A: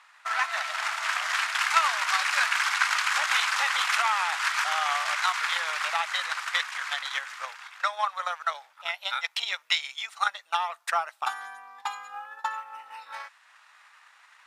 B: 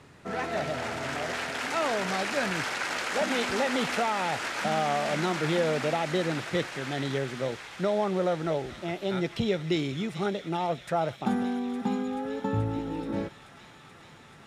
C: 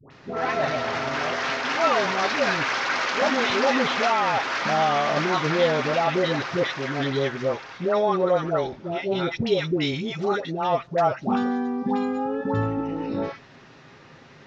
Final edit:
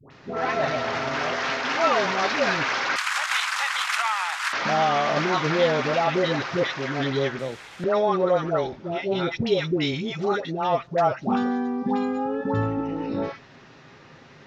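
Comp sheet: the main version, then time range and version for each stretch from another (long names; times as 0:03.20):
C
0:02.96–0:04.53: punch in from A
0:07.39–0:07.84: punch in from B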